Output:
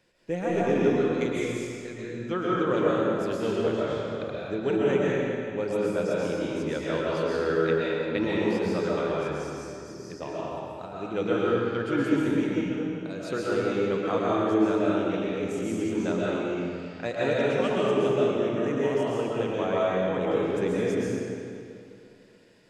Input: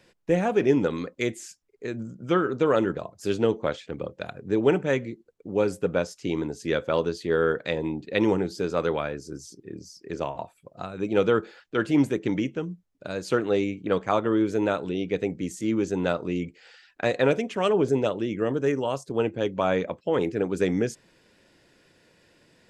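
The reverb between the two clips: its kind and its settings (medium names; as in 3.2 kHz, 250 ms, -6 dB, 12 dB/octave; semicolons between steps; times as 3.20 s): algorithmic reverb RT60 2.5 s, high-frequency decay 0.85×, pre-delay 90 ms, DRR -6.5 dB; trim -8 dB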